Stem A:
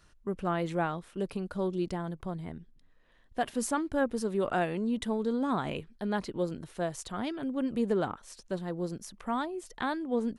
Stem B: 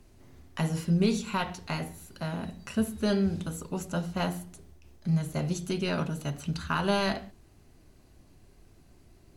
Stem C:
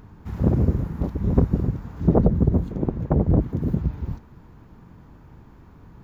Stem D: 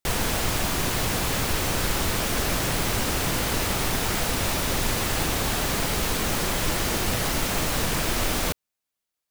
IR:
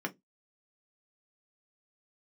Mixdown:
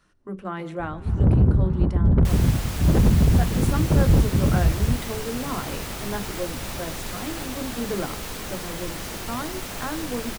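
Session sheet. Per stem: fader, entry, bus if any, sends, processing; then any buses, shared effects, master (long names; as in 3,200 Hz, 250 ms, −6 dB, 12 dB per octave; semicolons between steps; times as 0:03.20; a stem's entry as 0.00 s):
−5.5 dB, 0.00 s, send −3.5 dB, echo send −15 dB, no processing
−14.0 dB, 0.00 s, no send, no echo send, adaptive Wiener filter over 15 samples; automatic ducking −10 dB, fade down 1.70 s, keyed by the first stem
+0.5 dB, 0.80 s, no send, no echo send, low-pass filter 1,700 Hz 24 dB per octave; soft clipping −20 dBFS, distortion −8 dB; low-shelf EQ 200 Hz +10 dB
−8.0 dB, 2.20 s, no send, no echo send, no processing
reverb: on, RT60 0.15 s, pre-delay 3 ms
echo: repeating echo 150 ms, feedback 57%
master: no processing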